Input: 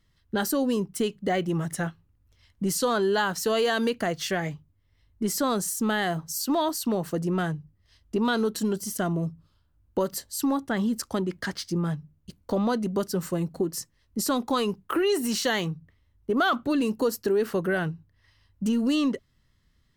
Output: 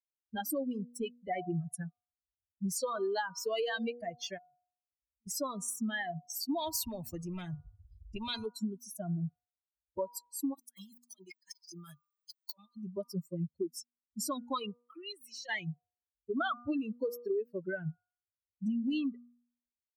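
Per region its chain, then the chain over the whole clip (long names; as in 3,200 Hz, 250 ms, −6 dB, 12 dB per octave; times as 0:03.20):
0:04.38–0:05.27: low-pass filter 1,000 Hz + downward compressor 3 to 1, threshold −49 dBFS
0:06.58–0:08.46: tilt shelving filter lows +5.5 dB, about 730 Hz + every bin compressed towards the loudest bin 2 to 1
0:10.54–0:12.77: spectral tilt +4.5 dB per octave + compressor whose output falls as the input rises −34 dBFS, ratio −0.5
0:14.78–0:15.49: high-pass filter 380 Hz + downward compressor 2.5 to 1, threshold −30 dBFS
whole clip: spectral dynamics exaggerated over time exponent 3; hum removal 240.8 Hz, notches 6; downward compressor, threshold −30 dBFS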